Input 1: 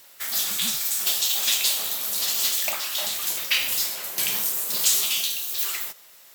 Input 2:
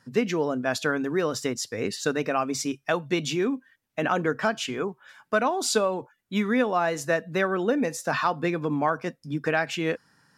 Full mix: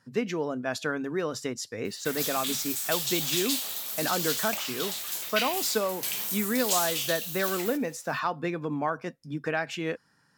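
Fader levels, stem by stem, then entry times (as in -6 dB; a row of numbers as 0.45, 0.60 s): -7.0, -4.5 dB; 1.85, 0.00 s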